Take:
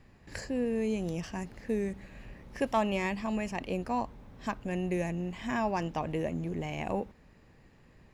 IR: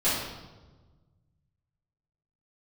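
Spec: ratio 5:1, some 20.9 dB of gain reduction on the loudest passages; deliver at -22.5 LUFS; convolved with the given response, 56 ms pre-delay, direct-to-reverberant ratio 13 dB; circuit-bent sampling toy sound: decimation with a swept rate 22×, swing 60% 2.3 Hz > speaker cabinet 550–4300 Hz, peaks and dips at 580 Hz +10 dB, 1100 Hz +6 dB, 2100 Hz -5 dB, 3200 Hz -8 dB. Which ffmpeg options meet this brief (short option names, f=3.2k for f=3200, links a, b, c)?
-filter_complex "[0:a]acompressor=threshold=-48dB:ratio=5,asplit=2[a][b];[1:a]atrim=start_sample=2205,adelay=56[c];[b][c]afir=irnorm=-1:irlink=0,volume=-25.5dB[d];[a][d]amix=inputs=2:normalize=0,acrusher=samples=22:mix=1:aa=0.000001:lfo=1:lforange=13.2:lforate=2.3,highpass=550,equalizer=f=580:t=q:w=4:g=10,equalizer=f=1.1k:t=q:w=4:g=6,equalizer=f=2.1k:t=q:w=4:g=-5,equalizer=f=3.2k:t=q:w=4:g=-8,lowpass=f=4.3k:w=0.5412,lowpass=f=4.3k:w=1.3066,volume=29.5dB"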